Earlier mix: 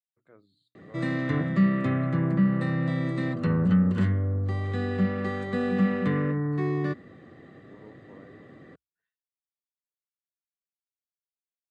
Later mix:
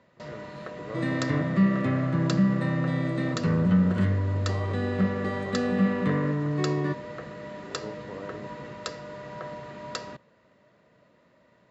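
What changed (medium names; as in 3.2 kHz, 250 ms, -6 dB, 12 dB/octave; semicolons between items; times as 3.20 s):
speech +11.5 dB; first sound: unmuted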